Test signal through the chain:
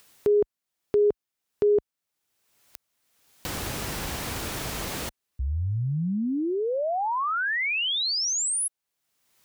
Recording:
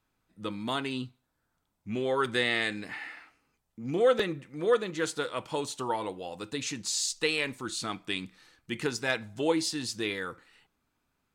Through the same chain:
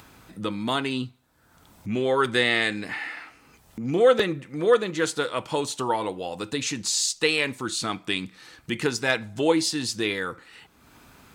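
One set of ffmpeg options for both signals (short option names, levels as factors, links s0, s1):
-filter_complex "[0:a]highpass=41,asplit=2[s0][s1];[s1]acompressor=mode=upward:threshold=0.0316:ratio=2.5,volume=0.944[s2];[s0][s2]amix=inputs=2:normalize=0"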